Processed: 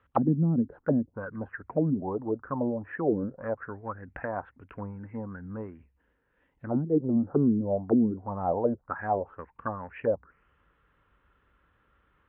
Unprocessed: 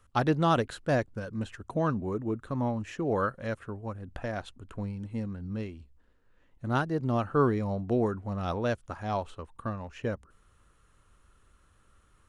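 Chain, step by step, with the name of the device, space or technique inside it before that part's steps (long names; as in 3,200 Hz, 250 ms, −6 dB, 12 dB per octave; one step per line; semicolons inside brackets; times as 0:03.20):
0:01.59–0:02.54: high-frequency loss of the air 240 metres
envelope filter bass rig (envelope-controlled low-pass 230–3,700 Hz down, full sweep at −23 dBFS; loudspeaker in its box 62–2,000 Hz, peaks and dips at 81 Hz −9 dB, 120 Hz −8 dB, 210 Hz −5 dB, 360 Hz −4 dB, 650 Hz −4 dB, 1,200 Hz −5 dB)
level +1.5 dB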